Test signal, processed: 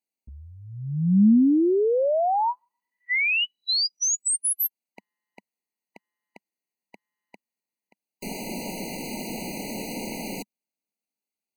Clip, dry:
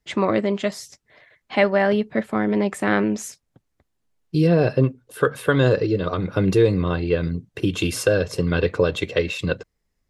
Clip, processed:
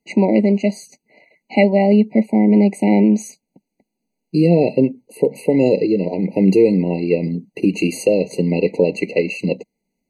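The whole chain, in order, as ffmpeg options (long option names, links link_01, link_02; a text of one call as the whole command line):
ffmpeg -i in.wav -af "lowshelf=frequency=140:width_type=q:width=3:gain=-13.5,afftfilt=real='re*eq(mod(floor(b*sr/1024/980),2),0)':imag='im*eq(mod(floor(b*sr/1024/980),2),0)':win_size=1024:overlap=0.75,volume=2.5dB" out.wav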